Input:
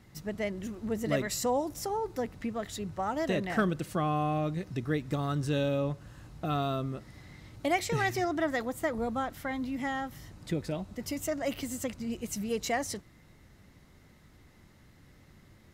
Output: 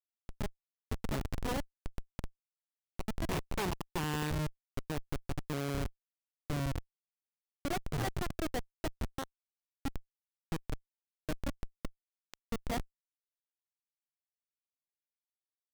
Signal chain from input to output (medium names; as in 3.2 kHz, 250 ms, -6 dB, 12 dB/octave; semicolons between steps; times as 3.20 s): Chebyshev shaper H 2 -17 dB, 3 -11 dB, 7 -24 dB, 8 -31 dB, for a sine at -15 dBFS; 3.31–4.30 s: rippled EQ curve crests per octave 0.73, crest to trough 10 dB; Schmitt trigger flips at -40.5 dBFS; trim +11 dB